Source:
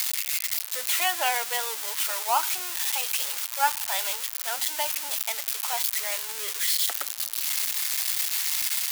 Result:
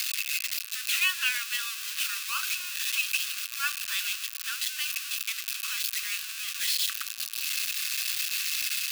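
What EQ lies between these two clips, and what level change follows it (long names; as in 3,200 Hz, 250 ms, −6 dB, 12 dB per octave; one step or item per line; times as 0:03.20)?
Chebyshev high-pass with heavy ripple 1,100 Hz, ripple 6 dB
parametric band 2,600 Hz +14.5 dB 0.22 octaves
0.0 dB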